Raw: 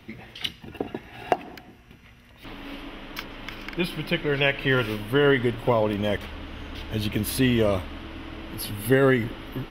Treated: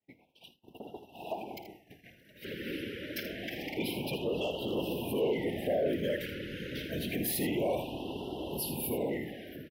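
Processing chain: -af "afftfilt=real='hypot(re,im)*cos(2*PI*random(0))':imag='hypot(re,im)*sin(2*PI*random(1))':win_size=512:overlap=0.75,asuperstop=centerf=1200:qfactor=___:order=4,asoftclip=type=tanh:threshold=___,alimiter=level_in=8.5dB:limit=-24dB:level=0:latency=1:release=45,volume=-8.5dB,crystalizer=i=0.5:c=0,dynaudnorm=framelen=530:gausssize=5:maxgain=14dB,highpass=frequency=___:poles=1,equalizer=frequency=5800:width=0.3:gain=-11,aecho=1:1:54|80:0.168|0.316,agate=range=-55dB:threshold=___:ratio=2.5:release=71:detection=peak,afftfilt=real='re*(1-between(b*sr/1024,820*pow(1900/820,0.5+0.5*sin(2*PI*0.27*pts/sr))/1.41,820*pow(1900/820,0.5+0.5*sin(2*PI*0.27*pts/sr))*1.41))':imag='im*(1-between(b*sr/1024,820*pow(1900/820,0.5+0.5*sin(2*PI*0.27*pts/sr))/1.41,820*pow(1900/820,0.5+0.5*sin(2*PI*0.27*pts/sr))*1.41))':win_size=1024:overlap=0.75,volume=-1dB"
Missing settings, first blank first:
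2, -20.5dB, 460, -48dB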